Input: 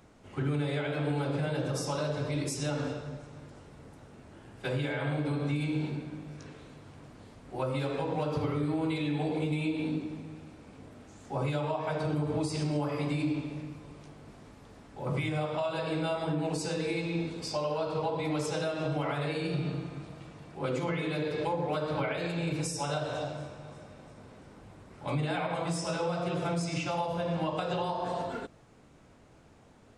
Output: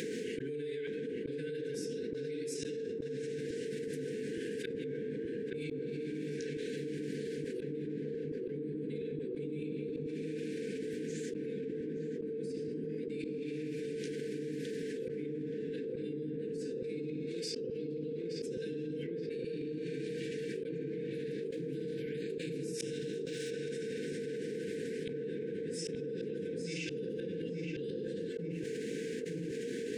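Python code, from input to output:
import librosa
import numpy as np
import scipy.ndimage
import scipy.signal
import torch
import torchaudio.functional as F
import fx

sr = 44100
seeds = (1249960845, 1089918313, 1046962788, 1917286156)

y = fx.spec_flatten(x, sr, power=0.63, at=(21.13, 23.49), fade=0.02)
y = scipy.signal.sosfilt(scipy.signal.butter(4, 180.0, 'highpass', fs=sr, output='sos'), y)
y = fx.peak_eq(y, sr, hz=450.0, db=14.0, octaves=0.22)
y = fx.hum_notches(y, sr, base_hz=60, count=4)
y = fx.gate_flip(y, sr, shuts_db=-23.0, range_db=-36)
y = fx.brickwall_bandstop(y, sr, low_hz=510.0, high_hz=1500.0)
y = fx.echo_filtered(y, sr, ms=873, feedback_pct=71, hz=930.0, wet_db=-5.5)
y = fx.env_flatten(y, sr, amount_pct=100)
y = F.gain(torch.from_numpy(y), -6.5).numpy()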